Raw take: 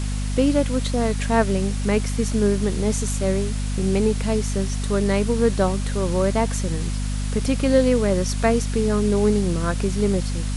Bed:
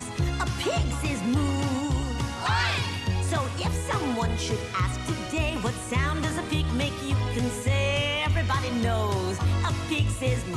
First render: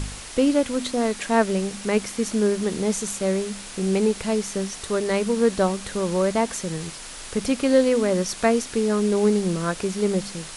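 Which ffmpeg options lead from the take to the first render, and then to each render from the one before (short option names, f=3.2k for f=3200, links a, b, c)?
-af "bandreject=f=50:t=h:w=4,bandreject=f=100:t=h:w=4,bandreject=f=150:t=h:w=4,bandreject=f=200:t=h:w=4,bandreject=f=250:t=h:w=4"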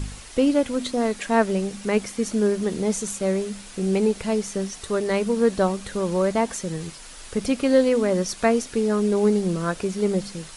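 -af "afftdn=nr=6:nf=-38"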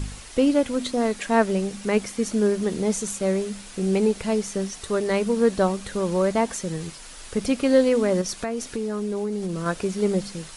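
-filter_complex "[0:a]asettb=1/sr,asplit=3[a][b][c];[a]atrim=end=8.214[d];[b]atrim=start=8.21:end=9.66,asetpts=PTS-STARTPTS,afade=t=in:d=0.004:c=qsin,afade=t=out:st=1.446:d=0.004:c=qsin,acompressor=threshold=-24dB:ratio=5:attack=3.2:release=140:knee=1:detection=peak[e];[c]atrim=start=9.656[f];[d][e]acrossfade=d=0.004:c1=hsin:c2=qsin[g];[g][f]acrossfade=d=0.004:c1=qsin:c2=hsin"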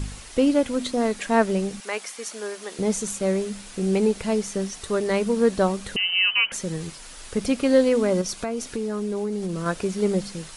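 -filter_complex "[0:a]asettb=1/sr,asplit=3[a][b][c];[a]atrim=end=1.804[d];[b]atrim=start=1.8:end=2.79,asetpts=PTS-STARTPTS,afade=t=in:d=0.004:c=qsin,afade=t=out:st=0.986:d=0.004:c=qsin,highpass=740[e];[c]atrim=start=2.786[f];[d][e]acrossfade=d=0.004:c1=hsin:c2=qsin[g];[g][f]acrossfade=d=0.004:c1=qsin:c2=hsin,asettb=1/sr,asplit=3[h][i][j];[h]atrim=end=5.964[k];[i]atrim=start=5.96:end=6.52,asetpts=PTS-STARTPTS,afade=t=in:d=0.004:c=qsin,afade=t=out:st=0.556:d=0.004:c=qsin,lowpass=f=2.7k:t=q:w=0.5098,lowpass=f=2.7k:t=q:w=0.6013,lowpass=f=2.7k:t=q:w=0.9,lowpass=f=2.7k:t=q:w=2.563,afreqshift=-3200[l];[j]atrim=start=6.516[m];[k][l]acrossfade=d=0.004:c1=hsin:c2=qsin[n];[n][m]acrossfade=d=0.004:c1=qsin:c2=hsin,asettb=1/sr,asplit=3[o][p][q];[o]atrim=end=8.054[r];[p]atrim=start=8.05:end=8.65,asetpts=PTS-STARTPTS,afade=t=in:d=0.004:c=qsin,afade=t=out:st=0.596:d=0.004:c=qsin,bandreject=f=1.8k:w=12[s];[q]atrim=start=8.646[t];[r][s]acrossfade=d=0.004:c1=hsin:c2=qsin[u];[u][t]acrossfade=d=0.004:c1=qsin:c2=hsin"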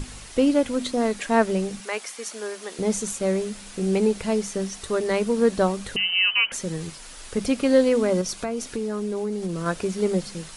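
-af "bandreject=f=50:t=h:w=6,bandreject=f=100:t=h:w=6,bandreject=f=150:t=h:w=6,bandreject=f=200:t=h:w=6"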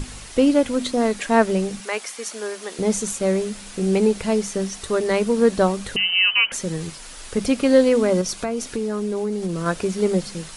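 -af "volume=3dB"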